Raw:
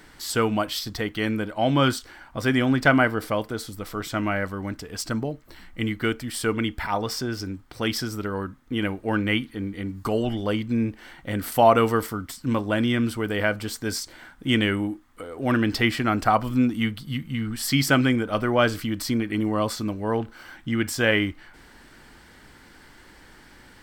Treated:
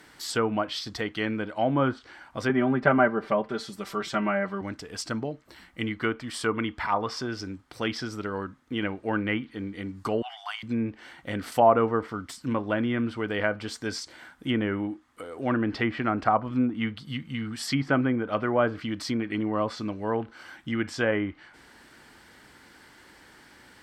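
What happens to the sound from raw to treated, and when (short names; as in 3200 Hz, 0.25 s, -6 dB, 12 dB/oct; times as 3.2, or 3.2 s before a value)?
2.49–4.61 comb 5.1 ms, depth 93%
5.98–7.27 bell 1100 Hz +6.5 dB 0.41 oct
10.22–10.63 brick-wall FIR high-pass 650 Hz
whole clip: HPF 56 Hz; treble ducked by the level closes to 1300 Hz, closed at -17.5 dBFS; low shelf 200 Hz -6 dB; gain -1.5 dB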